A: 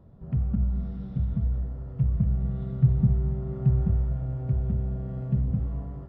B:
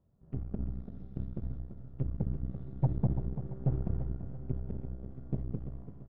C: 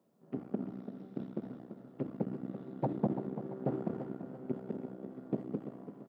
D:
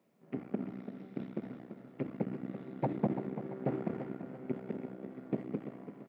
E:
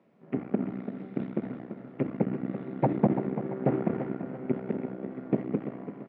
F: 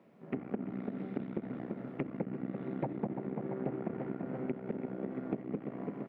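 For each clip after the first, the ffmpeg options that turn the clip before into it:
-filter_complex "[0:a]aeval=exprs='0.335*(cos(1*acos(clip(val(0)/0.335,-1,1)))-cos(1*PI/2))+0.0422*(cos(6*acos(clip(val(0)/0.335,-1,1)))-cos(6*PI/2))+0.0335*(cos(7*acos(clip(val(0)/0.335,-1,1)))-cos(7*PI/2))':c=same,asplit=2[s0][s1];[s1]aecho=0:1:338|676|1014|1352:0.316|0.133|0.0558|0.0234[s2];[s0][s2]amix=inputs=2:normalize=0,volume=0.376"
-af "highpass=f=220:w=0.5412,highpass=f=220:w=1.3066,volume=2.24"
-af "equalizer=f=2200:t=o:w=0.74:g=12.5"
-af "lowpass=2700,volume=2.51"
-af "acompressor=threshold=0.0158:ratio=6,volume=1.33"

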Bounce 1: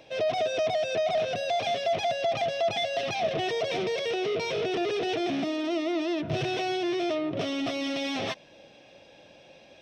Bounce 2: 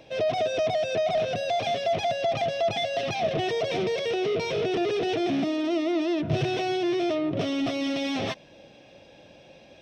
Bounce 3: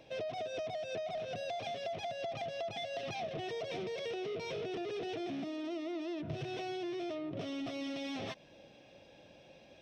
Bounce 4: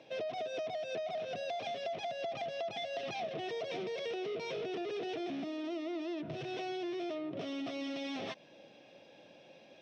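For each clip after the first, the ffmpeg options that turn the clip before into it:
-af "lowshelf=f=340:g=6.5"
-af "acompressor=threshold=0.0316:ratio=6,volume=0.447"
-af "highpass=180,lowpass=6400,volume=1.12"

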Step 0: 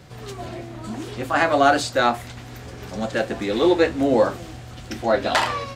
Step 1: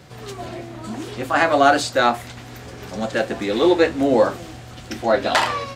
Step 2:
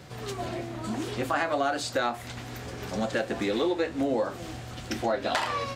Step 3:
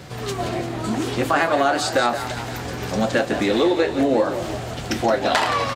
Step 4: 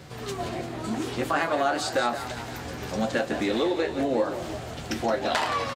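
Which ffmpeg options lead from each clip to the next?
-af "lowshelf=f=100:g=-6.5,volume=1.26"
-af "acompressor=threshold=0.0708:ratio=5,volume=0.841"
-filter_complex "[0:a]asplit=8[s0][s1][s2][s3][s4][s5][s6][s7];[s1]adelay=172,afreqshift=44,volume=0.299[s8];[s2]adelay=344,afreqshift=88,volume=0.18[s9];[s3]adelay=516,afreqshift=132,volume=0.107[s10];[s4]adelay=688,afreqshift=176,volume=0.0646[s11];[s5]adelay=860,afreqshift=220,volume=0.0389[s12];[s6]adelay=1032,afreqshift=264,volume=0.0232[s13];[s7]adelay=1204,afreqshift=308,volume=0.014[s14];[s0][s8][s9][s10][s11][s12][s13][s14]amix=inputs=8:normalize=0,volume=2.51"
-filter_complex "[0:a]asplit=2[s0][s1];[s1]adelay=13,volume=0.266[s2];[s0][s2]amix=inputs=2:normalize=0,volume=0.473"

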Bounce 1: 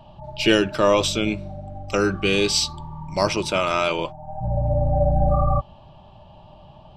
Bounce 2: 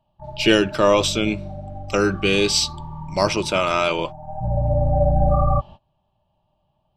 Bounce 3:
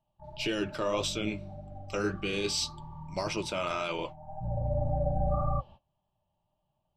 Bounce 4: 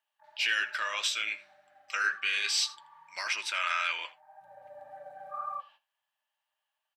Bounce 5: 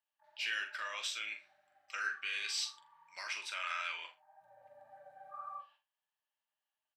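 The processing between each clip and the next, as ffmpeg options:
-af "agate=range=0.0631:threshold=0.0126:ratio=16:detection=peak,volume=1.19"
-af "alimiter=limit=0.335:level=0:latency=1:release=23,flanger=delay=5.7:depth=6.5:regen=-57:speed=1.8:shape=sinusoidal,volume=0.473"
-af "highpass=f=1700:t=q:w=4.6,aecho=1:1:81:0.106,volume=1.26"
-filter_complex "[0:a]asplit=2[s0][s1];[s1]adelay=43,volume=0.398[s2];[s0][s2]amix=inputs=2:normalize=0,volume=0.355"

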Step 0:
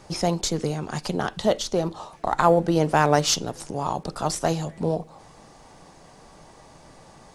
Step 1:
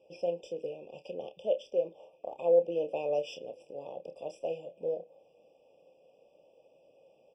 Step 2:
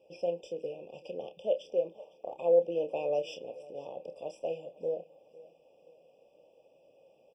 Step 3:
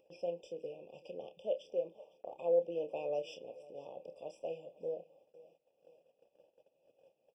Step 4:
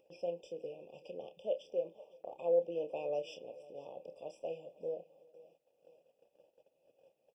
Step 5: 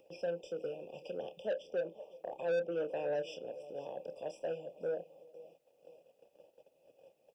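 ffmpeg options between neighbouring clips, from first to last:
-filter_complex "[0:a]asplit=3[s0][s1][s2];[s0]bandpass=f=530:t=q:w=8,volume=1[s3];[s1]bandpass=f=1840:t=q:w=8,volume=0.501[s4];[s2]bandpass=f=2480:t=q:w=8,volume=0.355[s5];[s3][s4][s5]amix=inputs=3:normalize=0,asplit=2[s6][s7];[s7]adelay=29,volume=0.335[s8];[s6][s8]amix=inputs=2:normalize=0,afftfilt=real='re*eq(mod(floor(b*sr/1024/1200),2),0)':imag='im*eq(mod(floor(b*sr/1024/1200),2),0)':win_size=1024:overlap=0.75,volume=0.841"
-af "aecho=1:1:505|1010|1515:0.0891|0.0348|0.0136"
-af "agate=range=0.112:threshold=0.00112:ratio=16:detection=peak,acompressor=mode=upward:threshold=0.00282:ratio=2.5,volume=0.501"
-filter_complex "[0:a]asplit=2[s0][s1];[s1]adelay=361.5,volume=0.0447,highshelf=f=4000:g=-8.13[s2];[s0][s2]amix=inputs=2:normalize=0"
-filter_complex "[0:a]acrossover=split=270|730[s0][s1][s2];[s1]asoftclip=type=tanh:threshold=0.0106[s3];[s2]alimiter=level_in=9.44:limit=0.0631:level=0:latency=1:release=416,volume=0.106[s4];[s0][s3][s4]amix=inputs=3:normalize=0,volume=1.88"

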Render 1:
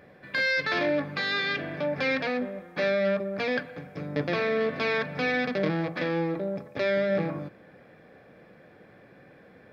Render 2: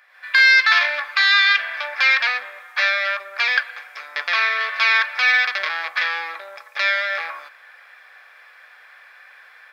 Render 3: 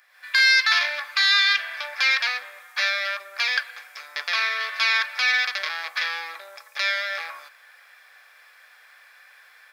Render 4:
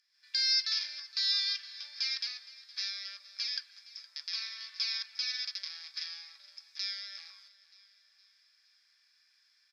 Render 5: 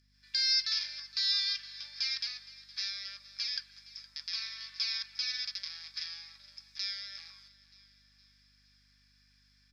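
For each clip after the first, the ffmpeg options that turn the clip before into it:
-af "dynaudnorm=f=100:g=3:m=2.82,highpass=f=1100:w=0.5412,highpass=f=1100:w=1.3066,volume=1.78"
-af "bass=f=250:g=-4,treble=f=4000:g=12,volume=0.501"
-af "bandpass=f=5100:t=q:w=6.8:csg=0,aecho=1:1:465|930|1395|1860:0.112|0.0561|0.0281|0.014"
-af "aeval=exprs='val(0)+0.000355*(sin(2*PI*50*n/s)+sin(2*PI*2*50*n/s)/2+sin(2*PI*3*50*n/s)/3+sin(2*PI*4*50*n/s)/4+sin(2*PI*5*50*n/s)/5)':c=same"

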